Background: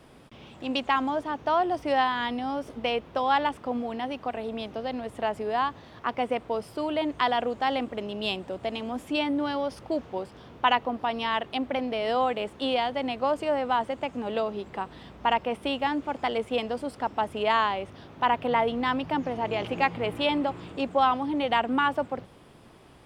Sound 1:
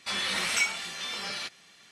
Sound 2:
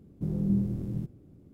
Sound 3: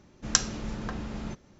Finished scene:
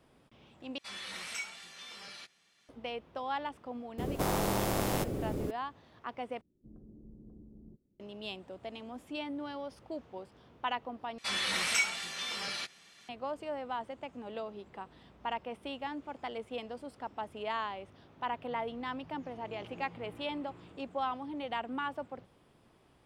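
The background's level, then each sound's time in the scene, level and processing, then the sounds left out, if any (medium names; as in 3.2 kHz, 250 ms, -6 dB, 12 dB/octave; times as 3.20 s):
background -12 dB
0.78 s: replace with 1 -13 dB
3.98 s: add 2 -0.5 dB + spectrum-flattening compressor 10:1
6.41 s: replace with 3 -11.5 dB + four-pole ladder low-pass 430 Hz, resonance 35%
11.18 s: replace with 1 -2.5 dB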